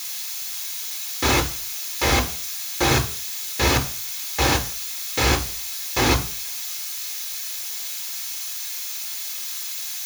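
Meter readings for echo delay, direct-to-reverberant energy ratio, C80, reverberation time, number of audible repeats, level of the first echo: no echo audible, −1.0 dB, 18.0 dB, 0.45 s, no echo audible, no echo audible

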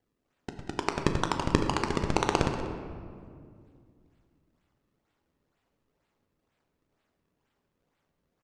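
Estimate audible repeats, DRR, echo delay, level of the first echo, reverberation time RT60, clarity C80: 1, 4.0 dB, 188 ms, −14.0 dB, 2.2 s, 6.5 dB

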